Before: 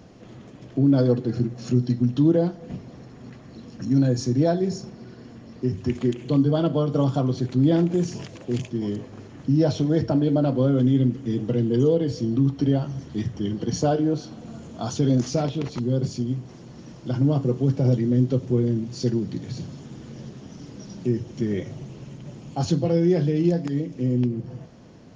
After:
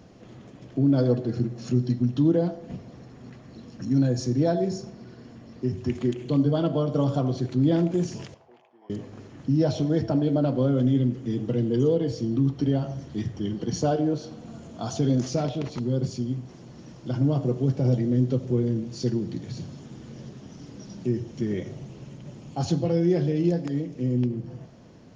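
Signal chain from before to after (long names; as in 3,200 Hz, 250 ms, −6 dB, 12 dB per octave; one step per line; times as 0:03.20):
0:08.34–0:08.90: four-pole ladder band-pass 920 Hz, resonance 60%
on a send: parametric band 600 Hz +13 dB 0.84 octaves + convolution reverb RT60 0.55 s, pre-delay 74 ms, DRR 14.5 dB
on the sum: level −2.5 dB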